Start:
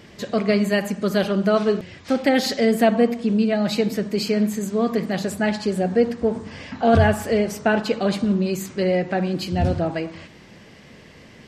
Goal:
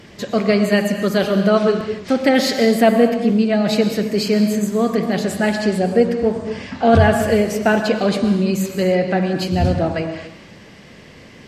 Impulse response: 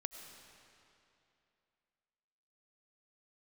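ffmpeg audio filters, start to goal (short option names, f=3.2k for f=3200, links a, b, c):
-filter_complex "[1:a]atrim=start_sample=2205,afade=t=out:st=0.31:d=0.01,atrim=end_sample=14112,asetrate=39690,aresample=44100[a];[0:a][a]afir=irnorm=-1:irlink=0,volume=6dB"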